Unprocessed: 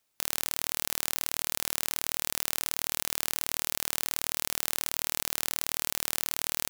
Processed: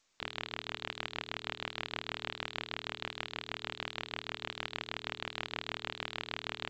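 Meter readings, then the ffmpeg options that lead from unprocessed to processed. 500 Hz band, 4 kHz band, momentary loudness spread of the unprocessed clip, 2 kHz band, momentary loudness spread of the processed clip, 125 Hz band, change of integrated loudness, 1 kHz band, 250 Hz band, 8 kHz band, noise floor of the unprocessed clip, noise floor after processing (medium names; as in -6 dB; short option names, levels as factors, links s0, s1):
-2.5 dB, -4.5 dB, 0 LU, -2.0 dB, 1 LU, -2.5 dB, -10.5 dB, -2.5 dB, -2.5 dB, -29.0 dB, -76 dBFS, -58 dBFS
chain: -af "bandreject=f=60:t=h:w=6,bandreject=f=120:t=h:w=6,bandreject=f=180:t=h:w=6,bandreject=f=240:t=h:w=6,bandreject=f=300:t=h:w=6,bandreject=f=360:t=h:w=6,bandreject=f=420:t=h:w=6,volume=1.26" -ar 16000 -c:a g722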